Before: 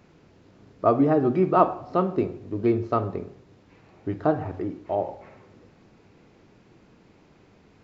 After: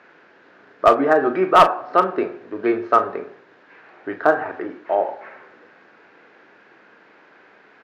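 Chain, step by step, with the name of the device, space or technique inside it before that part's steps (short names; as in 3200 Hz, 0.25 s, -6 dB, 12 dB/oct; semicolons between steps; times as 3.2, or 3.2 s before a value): megaphone (BPF 470–3300 Hz; bell 1600 Hz +12 dB 0.51 oct; hard clip -11.5 dBFS, distortion -15 dB; doubler 37 ms -11 dB); gain +7.5 dB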